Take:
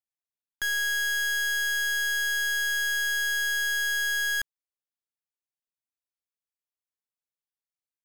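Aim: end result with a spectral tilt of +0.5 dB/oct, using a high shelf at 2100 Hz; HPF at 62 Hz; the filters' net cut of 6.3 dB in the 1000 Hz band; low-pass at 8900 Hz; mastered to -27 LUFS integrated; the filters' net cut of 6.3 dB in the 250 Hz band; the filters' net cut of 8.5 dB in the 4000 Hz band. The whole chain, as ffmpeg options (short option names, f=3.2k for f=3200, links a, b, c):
-af "highpass=62,lowpass=8.9k,equalizer=f=250:t=o:g=-8,equalizer=f=1k:t=o:g=-5.5,highshelf=f=2.1k:g=-7.5,equalizer=f=4k:t=o:g=-3.5,volume=4.5dB"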